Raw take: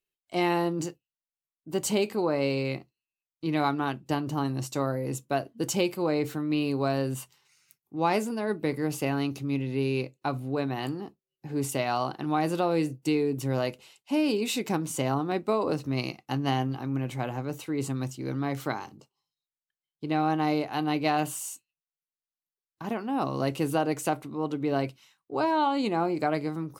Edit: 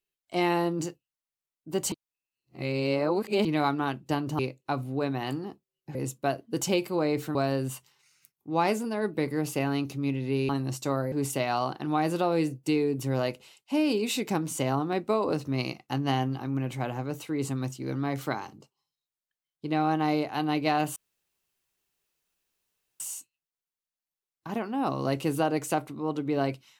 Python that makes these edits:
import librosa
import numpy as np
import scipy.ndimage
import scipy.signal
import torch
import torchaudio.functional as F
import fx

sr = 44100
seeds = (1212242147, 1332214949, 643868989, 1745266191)

y = fx.edit(x, sr, fx.reverse_span(start_s=1.92, length_s=1.53),
    fx.swap(start_s=4.39, length_s=0.63, other_s=9.95, other_length_s=1.56),
    fx.cut(start_s=6.42, length_s=0.39),
    fx.insert_room_tone(at_s=21.35, length_s=2.04), tone=tone)